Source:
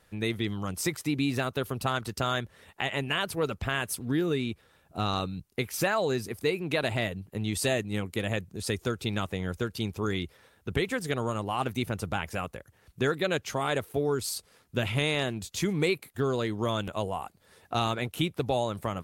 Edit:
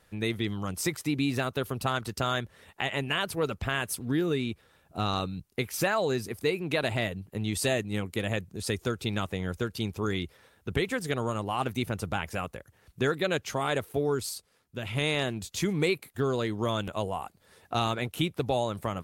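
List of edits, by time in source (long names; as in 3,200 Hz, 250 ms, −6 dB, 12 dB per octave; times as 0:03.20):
0:14.18–0:15.07: duck −8 dB, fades 0.27 s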